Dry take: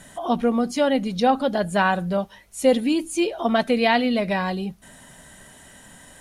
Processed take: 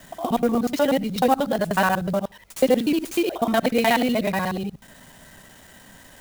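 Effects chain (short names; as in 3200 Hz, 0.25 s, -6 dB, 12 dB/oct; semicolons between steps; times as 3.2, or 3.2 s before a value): local time reversal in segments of 61 ms; clock jitter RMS 0.021 ms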